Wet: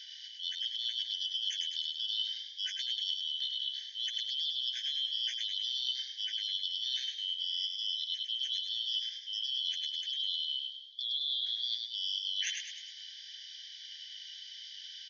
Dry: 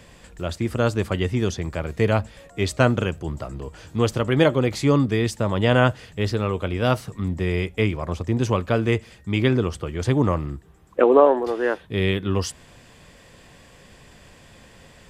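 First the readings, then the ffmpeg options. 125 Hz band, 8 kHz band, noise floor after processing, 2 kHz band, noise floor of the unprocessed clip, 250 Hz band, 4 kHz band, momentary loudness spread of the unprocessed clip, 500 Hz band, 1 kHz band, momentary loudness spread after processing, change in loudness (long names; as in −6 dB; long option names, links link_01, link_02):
below −40 dB, −8.0 dB, −49 dBFS, −20.5 dB, −50 dBFS, below −40 dB, +6.5 dB, 12 LU, below −40 dB, below −40 dB, 12 LU, −11.0 dB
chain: -filter_complex "[0:a]afftfilt=real='real(if(lt(b,272),68*(eq(floor(b/68),0)*2+eq(floor(b/68),1)*3+eq(floor(b/68),2)*0+eq(floor(b/68),3)*1)+mod(b,68),b),0)':imag='imag(if(lt(b,272),68*(eq(floor(b/68),0)*2+eq(floor(b/68),1)*3+eq(floor(b/68),2)*0+eq(floor(b/68),3)*1)+mod(b,68),b),0)':win_size=2048:overlap=0.75,afftfilt=real='re*between(b*sr/4096,1500,6700)':imag='im*between(b*sr/4096,1500,6700)':win_size=4096:overlap=0.75,alimiter=limit=-11dB:level=0:latency=1:release=11,areverse,acompressor=threshold=-34dB:ratio=8,areverse,asplit=7[link_01][link_02][link_03][link_04][link_05][link_06][link_07];[link_02]adelay=103,afreqshift=52,volume=-4.5dB[link_08];[link_03]adelay=206,afreqshift=104,volume=-10.9dB[link_09];[link_04]adelay=309,afreqshift=156,volume=-17.3dB[link_10];[link_05]adelay=412,afreqshift=208,volume=-23.6dB[link_11];[link_06]adelay=515,afreqshift=260,volume=-30dB[link_12];[link_07]adelay=618,afreqshift=312,volume=-36.4dB[link_13];[link_01][link_08][link_09][link_10][link_11][link_12][link_13]amix=inputs=7:normalize=0"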